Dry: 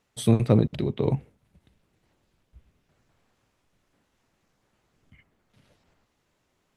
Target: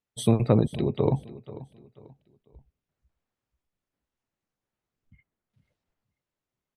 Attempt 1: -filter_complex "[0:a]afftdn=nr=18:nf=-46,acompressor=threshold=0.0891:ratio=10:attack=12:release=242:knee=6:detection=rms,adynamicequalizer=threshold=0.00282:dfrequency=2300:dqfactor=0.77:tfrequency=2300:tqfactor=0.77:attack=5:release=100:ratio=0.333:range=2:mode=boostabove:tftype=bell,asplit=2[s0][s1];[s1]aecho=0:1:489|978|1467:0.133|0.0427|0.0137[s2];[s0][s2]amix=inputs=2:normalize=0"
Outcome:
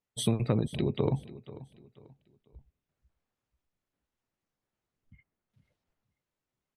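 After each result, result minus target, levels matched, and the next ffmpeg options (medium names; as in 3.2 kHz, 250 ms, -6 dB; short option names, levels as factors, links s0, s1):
compression: peak gain reduction +7 dB; 2 kHz band +4.5 dB
-filter_complex "[0:a]afftdn=nr=18:nf=-46,acompressor=threshold=0.251:ratio=10:attack=12:release=242:knee=6:detection=rms,adynamicequalizer=threshold=0.00282:dfrequency=2300:dqfactor=0.77:tfrequency=2300:tqfactor=0.77:attack=5:release=100:ratio=0.333:range=2:mode=boostabove:tftype=bell,asplit=2[s0][s1];[s1]aecho=0:1:489|978|1467:0.133|0.0427|0.0137[s2];[s0][s2]amix=inputs=2:normalize=0"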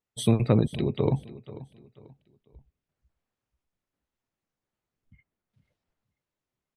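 2 kHz band +3.5 dB
-filter_complex "[0:a]afftdn=nr=18:nf=-46,acompressor=threshold=0.251:ratio=10:attack=12:release=242:knee=6:detection=rms,adynamicequalizer=threshold=0.00282:dfrequency=790:dqfactor=0.77:tfrequency=790:tqfactor=0.77:attack=5:release=100:ratio=0.333:range=2:mode=boostabove:tftype=bell,asplit=2[s0][s1];[s1]aecho=0:1:489|978|1467:0.133|0.0427|0.0137[s2];[s0][s2]amix=inputs=2:normalize=0"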